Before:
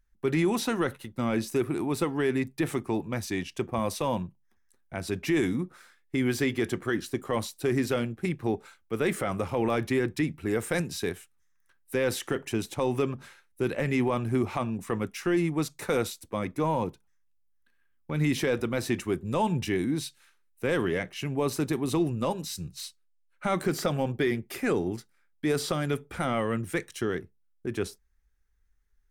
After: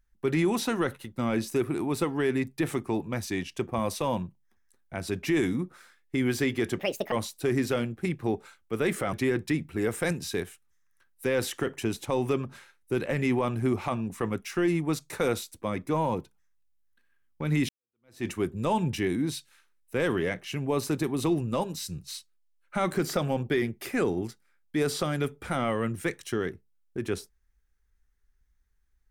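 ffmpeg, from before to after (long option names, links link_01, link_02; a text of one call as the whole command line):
ffmpeg -i in.wav -filter_complex "[0:a]asplit=5[link_01][link_02][link_03][link_04][link_05];[link_01]atrim=end=6.794[link_06];[link_02]atrim=start=6.79:end=7.32,asetpts=PTS-STARTPTS,asetrate=71001,aresample=44100,atrim=end_sample=14517,asetpts=PTS-STARTPTS[link_07];[link_03]atrim=start=7.316:end=9.332[link_08];[link_04]atrim=start=9.818:end=18.38,asetpts=PTS-STARTPTS,afade=type=out:start_time=8.558:duration=0.004:curve=hsin[link_09];[link_05]atrim=start=18.38,asetpts=PTS-STARTPTS,afade=type=in:duration=0.57:curve=exp[link_10];[link_06][link_07]acrossfade=duration=0.004:curve1=hsin:curve2=hsin[link_11];[link_11][link_08]acrossfade=duration=0.004:curve1=hsin:curve2=hsin[link_12];[link_09][link_10]concat=n=2:v=0:a=1[link_13];[link_12][link_13]acrossfade=duration=0.004:curve1=hsin:curve2=hsin" out.wav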